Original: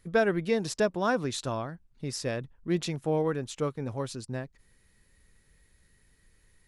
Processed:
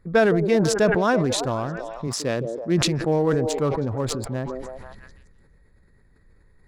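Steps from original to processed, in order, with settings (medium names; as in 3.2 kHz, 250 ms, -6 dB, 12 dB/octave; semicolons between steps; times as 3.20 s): local Wiener filter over 15 samples; 2.07–2.81 s: high-pass 120 Hz; repeats whose band climbs or falls 164 ms, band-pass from 410 Hz, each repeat 0.7 oct, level -10 dB; decay stretcher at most 28 dB/s; trim +6 dB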